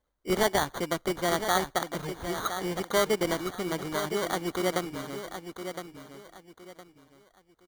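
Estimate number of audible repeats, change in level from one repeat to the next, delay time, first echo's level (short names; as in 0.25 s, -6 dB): 3, -11.0 dB, 1.013 s, -9.0 dB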